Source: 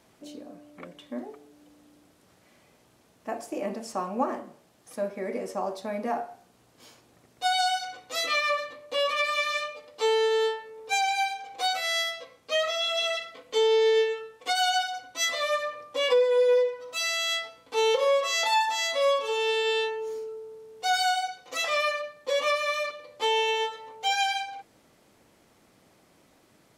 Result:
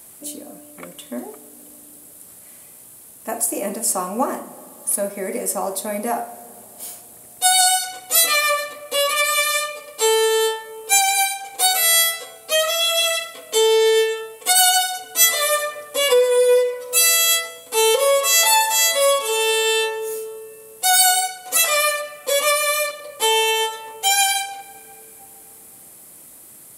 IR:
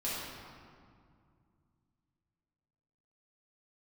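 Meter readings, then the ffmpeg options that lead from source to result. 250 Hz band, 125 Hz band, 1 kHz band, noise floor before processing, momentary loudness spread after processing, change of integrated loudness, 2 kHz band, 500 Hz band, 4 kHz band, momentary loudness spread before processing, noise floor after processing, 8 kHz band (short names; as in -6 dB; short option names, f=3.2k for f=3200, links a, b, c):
+6.0 dB, n/a, +6.0 dB, -62 dBFS, 17 LU, +9.5 dB, +7.5 dB, +6.0 dB, +9.0 dB, 15 LU, -44 dBFS, +20.0 dB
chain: -filter_complex "[0:a]equalizer=f=10k:w=0.53:g=11,aexciter=amount=5.1:drive=6.2:freq=8.1k,asplit=2[a][b];[1:a]atrim=start_sample=2205,asetrate=22491,aresample=44100[c];[b][c]afir=irnorm=-1:irlink=0,volume=-26.5dB[d];[a][d]amix=inputs=2:normalize=0,volume=5.5dB"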